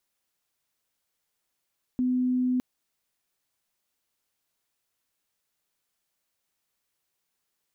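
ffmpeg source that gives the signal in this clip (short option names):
-f lavfi -i "sine=f=252:d=0.61:r=44100,volume=-3.94dB"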